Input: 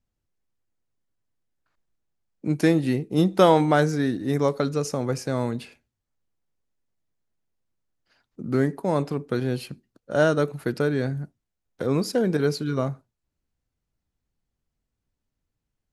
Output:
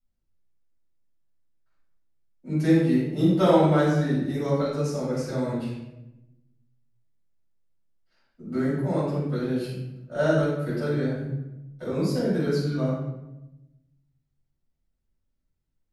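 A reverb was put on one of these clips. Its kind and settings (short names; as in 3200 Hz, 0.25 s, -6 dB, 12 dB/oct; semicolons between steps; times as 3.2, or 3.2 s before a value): shoebox room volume 340 m³, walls mixed, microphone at 7 m; gain -18.5 dB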